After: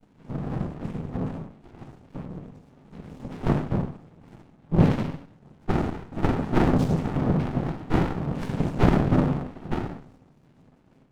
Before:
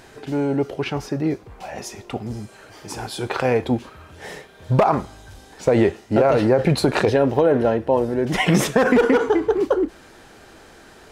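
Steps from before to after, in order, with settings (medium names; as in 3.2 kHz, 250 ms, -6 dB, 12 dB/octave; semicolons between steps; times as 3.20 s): pitch-class resonator C, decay 0.5 s; noise-vocoded speech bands 4; on a send at -7.5 dB: reverberation RT60 0.55 s, pre-delay 41 ms; on the sum: sliding maximum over 65 samples; trim +8.5 dB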